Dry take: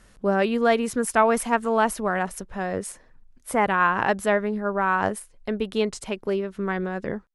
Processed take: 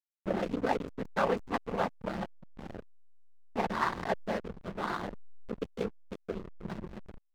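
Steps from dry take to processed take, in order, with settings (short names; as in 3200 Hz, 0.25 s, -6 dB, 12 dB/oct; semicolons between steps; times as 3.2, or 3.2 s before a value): noise vocoder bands 16; backlash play -18 dBFS; gain -8 dB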